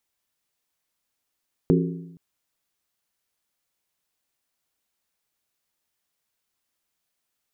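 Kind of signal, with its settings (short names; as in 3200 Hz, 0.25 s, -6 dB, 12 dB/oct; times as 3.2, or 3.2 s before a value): skin hit length 0.47 s, lowest mode 169 Hz, modes 5, decay 0.94 s, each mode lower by 2 dB, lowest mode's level -16 dB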